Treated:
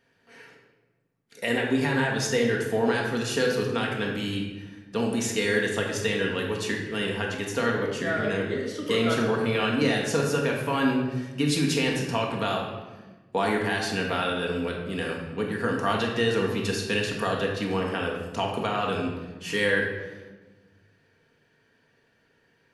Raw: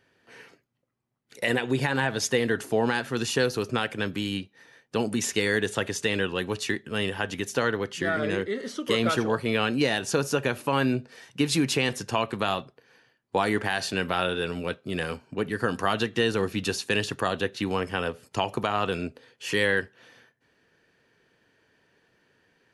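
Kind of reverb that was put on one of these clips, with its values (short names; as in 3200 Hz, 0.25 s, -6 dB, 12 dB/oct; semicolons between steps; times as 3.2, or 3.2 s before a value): shoebox room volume 810 m³, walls mixed, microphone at 1.7 m; gain -3.5 dB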